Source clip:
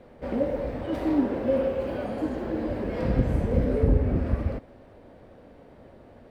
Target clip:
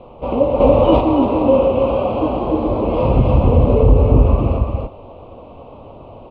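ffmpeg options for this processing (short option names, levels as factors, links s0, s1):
-filter_complex "[0:a]firequalizer=gain_entry='entry(120,0);entry(180,-5);entry(1100,7);entry(1700,-28);entry(2600,4);entry(4700,-14);entry(7000,-28)':delay=0.05:min_phase=1,flanger=delay=5.4:depth=3.5:regen=-80:speed=0.47:shape=triangular,asettb=1/sr,asplit=3[s0][s1][s2];[s0]atrim=end=2.394[s3];[s1]atrim=start=2.39:end=2.82,asetpts=PTS-STARTPTS,afade=t=in:d=0.004:c=qsin,afade=t=out:st=0.426:d=0.004:c=qsin,bandreject=f=2800:w=6.1[s4];[s2]atrim=start=2.816[s5];[s3][s4]acrossfade=d=0.004:c1=hsin:c2=qsin[s6];[s6][s5]acrossfade=d=0.004:c1=qsin:c2=hsin,aecho=1:1:284:0.668,asettb=1/sr,asplit=3[s7][s8][s9];[s7]atrim=end=0.604[s10];[s8]atrim=start=0.6:end=1.01,asetpts=PTS-STARTPTS,afade=t=in:d=0.004:c=qsin,afade=t=out:st=0.406:d=0.004:c=qsin,acontrast=74[s11];[s9]atrim=start=1.006[s12];[s10][s11]acrossfade=d=0.004:c1=hsin:c2=qsin[s13];[s13][s12]acrossfade=d=0.004:c1=qsin:c2=hsin,alimiter=level_in=7.08:limit=0.891:release=50:level=0:latency=1,volume=0.891"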